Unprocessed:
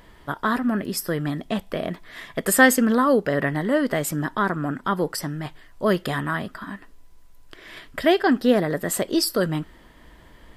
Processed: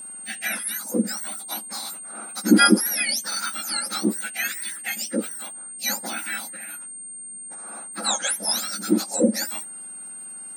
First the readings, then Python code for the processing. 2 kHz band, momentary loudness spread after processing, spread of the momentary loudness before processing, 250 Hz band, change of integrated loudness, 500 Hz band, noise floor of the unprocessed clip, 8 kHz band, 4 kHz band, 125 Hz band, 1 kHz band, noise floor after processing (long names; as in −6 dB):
−3.0 dB, 15 LU, 16 LU, −2.0 dB, −2.0 dB, −8.5 dB, −50 dBFS, +6.5 dB, +5.0 dB, can't be measured, −4.5 dB, −38 dBFS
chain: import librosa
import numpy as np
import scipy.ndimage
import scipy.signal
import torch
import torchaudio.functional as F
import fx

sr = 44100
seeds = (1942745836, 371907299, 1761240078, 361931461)

y = fx.octave_mirror(x, sr, pivot_hz=1600.0)
y = y + 10.0 ** (-35.0 / 20.0) * np.sin(2.0 * np.pi * 8700.0 * np.arange(len(y)) / sr)